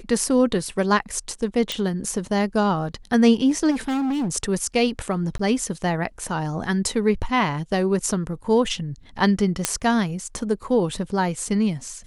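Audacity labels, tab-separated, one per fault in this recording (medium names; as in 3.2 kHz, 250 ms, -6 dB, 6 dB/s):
1.720000	1.720000	pop -10 dBFS
3.700000	4.290000	clipped -21 dBFS
5.380000	5.390000	dropout 14 ms
9.650000	9.650000	pop -2 dBFS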